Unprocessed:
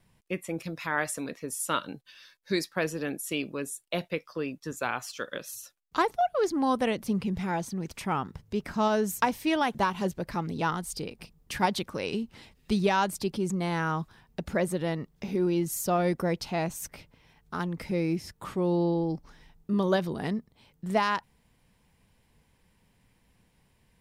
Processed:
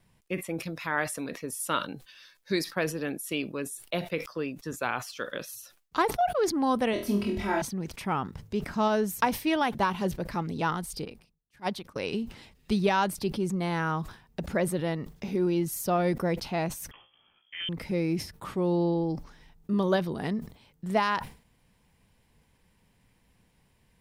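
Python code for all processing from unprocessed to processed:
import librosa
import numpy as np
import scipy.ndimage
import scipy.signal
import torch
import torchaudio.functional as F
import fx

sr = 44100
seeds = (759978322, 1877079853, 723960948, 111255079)

y = fx.chain(x, sr, fx.comb(ms=3.1, depth=0.85),
    fx.room_flutter(wall_m=4.2, rt60_s=0.4), at=(6.93, 7.62))
y = fx.chain(y, sr, fx.transient(attack_db=-12, sustain_db=-1),
    fx.upward_expand(threshold_db=-45.0, expansion=2.5), at=(11.05, 11.96))
y = fx.chain(y, sr, fx.cvsd(bps=64000),
    fx.comb_fb(f0_hz=59.0, decay_s=0.35, harmonics='all', damping=0.0, mix_pct=80),
    fx.freq_invert(carrier_hz=3300), at=(16.91, 17.69))
y = fx.dynamic_eq(y, sr, hz=7200.0, q=2.4, threshold_db=-57.0, ratio=4.0, max_db=-6)
y = fx.sustainer(y, sr, db_per_s=140.0)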